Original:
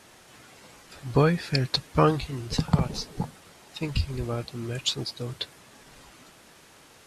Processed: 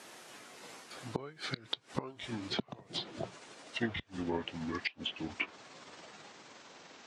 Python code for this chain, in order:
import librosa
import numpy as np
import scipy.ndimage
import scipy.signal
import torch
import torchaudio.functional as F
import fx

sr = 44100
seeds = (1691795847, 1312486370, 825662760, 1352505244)

y = fx.pitch_glide(x, sr, semitones=-9.5, runs='starting unshifted')
y = fx.gate_flip(y, sr, shuts_db=-17.0, range_db=-24)
y = scipy.signal.sosfilt(scipy.signal.butter(2, 230.0, 'highpass', fs=sr, output='sos'), y)
y = fx.env_lowpass_down(y, sr, base_hz=2600.0, full_db=-32.0)
y = F.gain(torch.from_numpy(y), 1.0).numpy()